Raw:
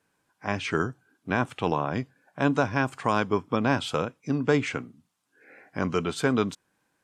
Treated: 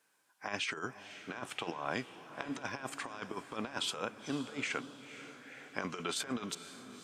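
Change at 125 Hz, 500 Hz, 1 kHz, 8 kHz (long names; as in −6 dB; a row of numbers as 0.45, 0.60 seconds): −19.0, −15.5, −12.5, −0.5 decibels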